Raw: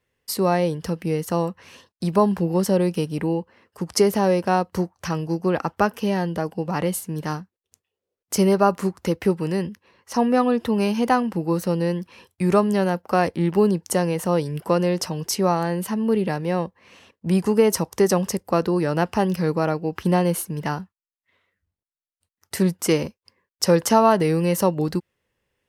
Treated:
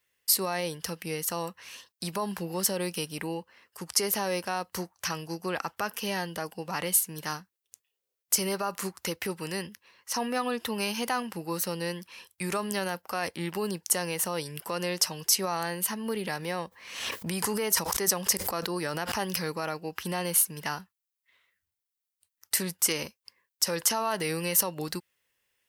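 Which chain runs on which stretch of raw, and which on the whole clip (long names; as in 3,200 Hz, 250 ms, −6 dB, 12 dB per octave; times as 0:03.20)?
0:15.90–0:19.52: notch filter 2,700 Hz, Q 21 + background raised ahead of every attack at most 63 dB per second
whole clip: high-shelf EQ 11,000 Hz +9 dB; brickwall limiter −12.5 dBFS; tilt shelving filter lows −8.5 dB, about 880 Hz; level −5.5 dB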